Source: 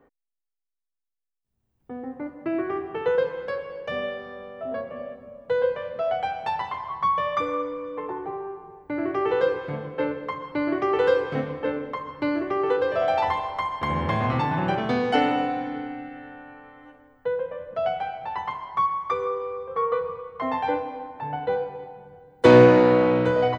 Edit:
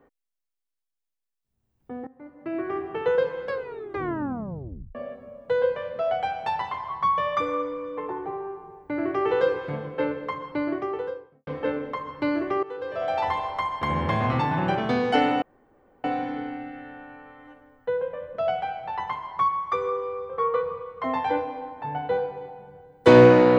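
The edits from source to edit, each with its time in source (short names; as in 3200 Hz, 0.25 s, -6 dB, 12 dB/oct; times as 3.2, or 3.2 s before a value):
2.07–2.83 fade in, from -21 dB
3.5 tape stop 1.45 s
10.33–11.47 studio fade out
12.63–13.45 fade in, from -18.5 dB
15.42 insert room tone 0.62 s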